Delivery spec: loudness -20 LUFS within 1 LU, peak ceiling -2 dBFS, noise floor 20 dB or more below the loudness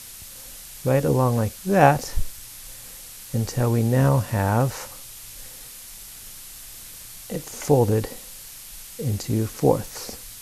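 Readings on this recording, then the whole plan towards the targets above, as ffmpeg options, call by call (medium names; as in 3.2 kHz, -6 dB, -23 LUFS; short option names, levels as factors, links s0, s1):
noise floor -41 dBFS; noise floor target -43 dBFS; loudness -22.5 LUFS; peak level -2.5 dBFS; loudness target -20.0 LUFS
-> -af "afftdn=nr=6:nf=-41"
-af "volume=1.33,alimiter=limit=0.794:level=0:latency=1"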